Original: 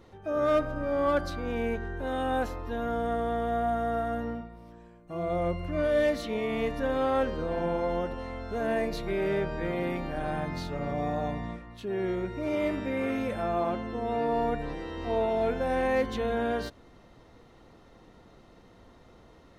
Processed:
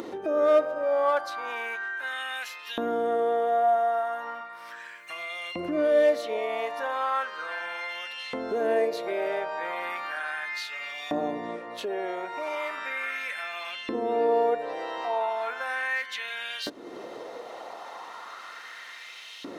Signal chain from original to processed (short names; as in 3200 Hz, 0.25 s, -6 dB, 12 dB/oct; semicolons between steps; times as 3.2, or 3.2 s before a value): LFO high-pass saw up 0.36 Hz 290–3100 Hz; upward compressor, threshold -26 dBFS